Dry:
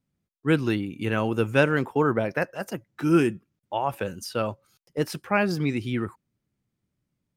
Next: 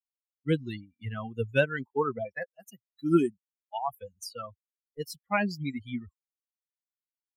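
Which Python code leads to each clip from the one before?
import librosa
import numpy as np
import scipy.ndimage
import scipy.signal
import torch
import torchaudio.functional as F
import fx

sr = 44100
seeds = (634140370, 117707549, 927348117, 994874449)

y = fx.bin_expand(x, sr, power=3.0)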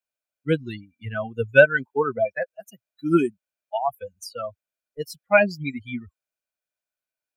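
y = fx.small_body(x, sr, hz=(620.0, 1500.0, 2400.0), ring_ms=25, db=13)
y = y * 10.0 ** (2.5 / 20.0)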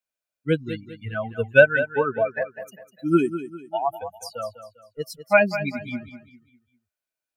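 y = fx.echo_feedback(x, sr, ms=200, feedback_pct=37, wet_db=-12.0)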